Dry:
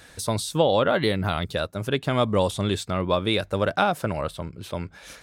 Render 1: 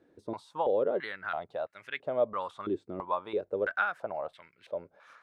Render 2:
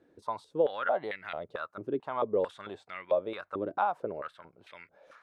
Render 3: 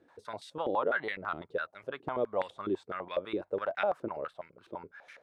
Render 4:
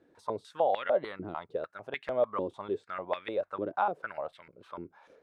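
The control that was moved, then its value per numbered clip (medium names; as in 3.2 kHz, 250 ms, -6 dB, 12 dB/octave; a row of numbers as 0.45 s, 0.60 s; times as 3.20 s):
step-sequenced band-pass, rate: 3 Hz, 4.5 Hz, 12 Hz, 6.7 Hz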